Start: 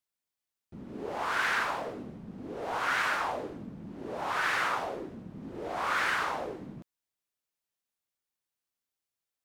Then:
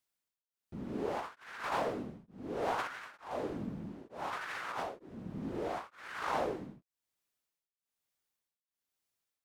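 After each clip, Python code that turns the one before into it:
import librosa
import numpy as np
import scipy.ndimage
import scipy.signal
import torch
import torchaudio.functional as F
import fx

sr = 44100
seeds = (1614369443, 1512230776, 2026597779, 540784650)

y = fx.over_compress(x, sr, threshold_db=-34.0, ratio=-0.5)
y = y * np.abs(np.cos(np.pi * 1.1 * np.arange(len(y)) / sr))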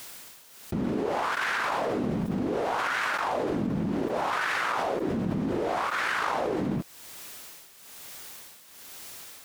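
y = fx.low_shelf(x, sr, hz=130.0, db=-5.5)
y = fx.env_flatten(y, sr, amount_pct=100)
y = y * librosa.db_to_amplitude(3.0)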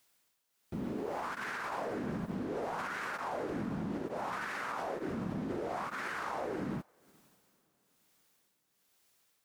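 y = fx.dynamic_eq(x, sr, hz=3300.0, q=1.4, threshold_db=-47.0, ratio=4.0, max_db=-5)
y = fx.echo_diffused(y, sr, ms=503, feedback_pct=47, wet_db=-13.5)
y = fx.upward_expand(y, sr, threshold_db=-41.0, expansion=2.5)
y = y * librosa.db_to_amplitude(-6.0)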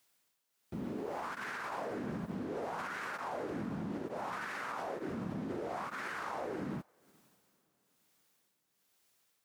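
y = scipy.signal.sosfilt(scipy.signal.butter(2, 58.0, 'highpass', fs=sr, output='sos'), x)
y = y * librosa.db_to_amplitude(-2.0)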